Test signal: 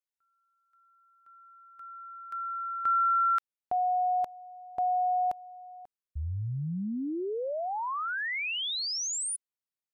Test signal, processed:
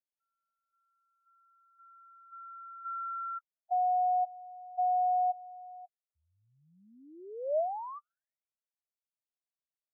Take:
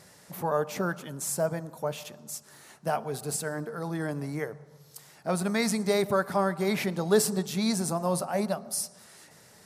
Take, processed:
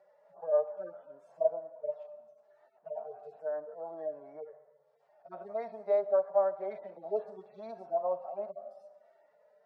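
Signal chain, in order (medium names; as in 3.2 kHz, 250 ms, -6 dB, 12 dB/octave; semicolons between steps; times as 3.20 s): harmonic-percussive separation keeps harmonic; ladder band-pass 670 Hz, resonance 75%; trim +3.5 dB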